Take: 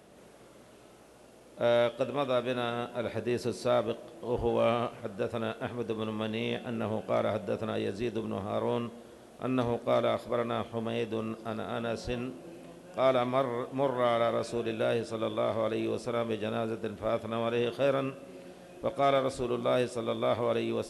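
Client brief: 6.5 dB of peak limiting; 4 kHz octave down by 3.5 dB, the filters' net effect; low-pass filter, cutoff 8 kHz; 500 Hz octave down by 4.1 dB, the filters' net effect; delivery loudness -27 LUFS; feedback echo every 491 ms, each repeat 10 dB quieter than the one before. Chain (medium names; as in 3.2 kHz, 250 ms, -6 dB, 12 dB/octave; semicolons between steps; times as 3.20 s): low-pass 8 kHz; peaking EQ 500 Hz -5 dB; peaking EQ 4 kHz -4 dB; peak limiter -23.5 dBFS; feedback delay 491 ms, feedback 32%, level -10 dB; trim +8 dB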